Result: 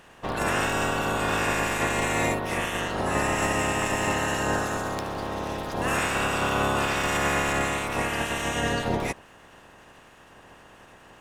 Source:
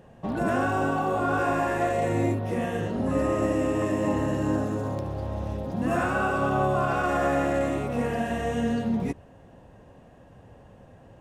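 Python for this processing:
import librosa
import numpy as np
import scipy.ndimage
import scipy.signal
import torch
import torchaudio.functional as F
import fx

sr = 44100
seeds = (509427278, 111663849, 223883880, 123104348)

y = fx.spec_clip(x, sr, under_db=24)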